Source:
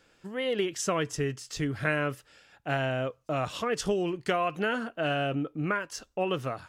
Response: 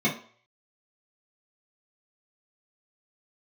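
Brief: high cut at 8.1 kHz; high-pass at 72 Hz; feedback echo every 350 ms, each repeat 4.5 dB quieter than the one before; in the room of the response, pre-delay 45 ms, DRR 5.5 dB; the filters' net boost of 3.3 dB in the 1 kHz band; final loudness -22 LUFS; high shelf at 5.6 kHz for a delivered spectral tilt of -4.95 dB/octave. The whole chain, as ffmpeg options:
-filter_complex "[0:a]highpass=72,lowpass=8100,equalizer=f=1000:t=o:g=5,highshelf=f=5600:g=-7.5,aecho=1:1:350|700|1050|1400|1750|2100|2450|2800|3150:0.596|0.357|0.214|0.129|0.0772|0.0463|0.0278|0.0167|0.01,asplit=2[s0][s1];[1:a]atrim=start_sample=2205,adelay=45[s2];[s1][s2]afir=irnorm=-1:irlink=0,volume=0.119[s3];[s0][s3]amix=inputs=2:normalize=0,volume=1.5"

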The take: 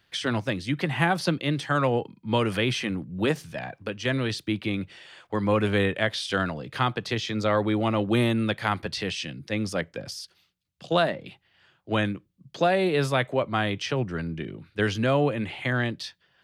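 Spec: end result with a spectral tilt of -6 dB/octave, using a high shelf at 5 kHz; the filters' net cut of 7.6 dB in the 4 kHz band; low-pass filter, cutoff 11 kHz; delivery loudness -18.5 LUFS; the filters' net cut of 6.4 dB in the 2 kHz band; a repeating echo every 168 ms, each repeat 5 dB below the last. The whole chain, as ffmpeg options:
-af "lowpass=11000,equalizer=f=2000:t=o:g=-6.5,equalizer=f=4000:t=o:g=-4.5,highshelf=f=5000:g=-7,aecho=1:1:168|336|504|672|840|1008|1176:0.562|0.315|0.176|0.0988|0.0553|0.031|0.0173,volume=2.51"

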